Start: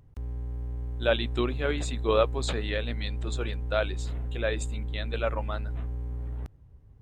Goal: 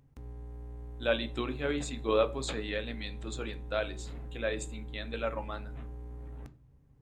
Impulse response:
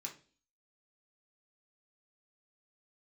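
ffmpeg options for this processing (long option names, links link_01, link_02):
-filter_complex "[0:a]asplit=2[link_01][link_02];[1:a]atrim=start_sample=2205,lowshelf=frequency=370:gain=7.5[link_03];[link_02][link_03]afir=irnorm=-1:irlink=0,volume=-2dB[link_04];[link_01][link_04]amix=inputs=2:normalize=0,volume=-7dB"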